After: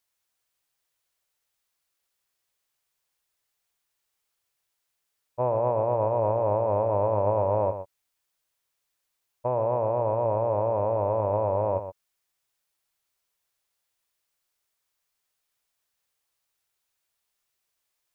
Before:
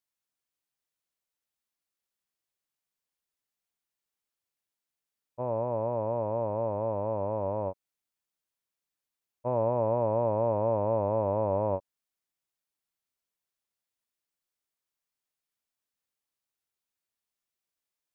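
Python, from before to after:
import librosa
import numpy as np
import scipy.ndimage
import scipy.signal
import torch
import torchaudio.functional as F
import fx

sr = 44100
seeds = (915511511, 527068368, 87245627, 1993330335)

p1 = fx.peak_eq(x, sr, hz=230.0, db=-9.0, octaves=1.1)
p2 = fx.over_compress(p1, sr, threshold_db=-33.0, ratio=-0.5)
p3 = p1 + (p2 * 10.0 ** (2.0 / 20.0))
y = p3 + 10.0 ** (-10.0 / 20.0) * np.pad(p3, (int(120 * sr / 1000.0), 0))[:len(p3)]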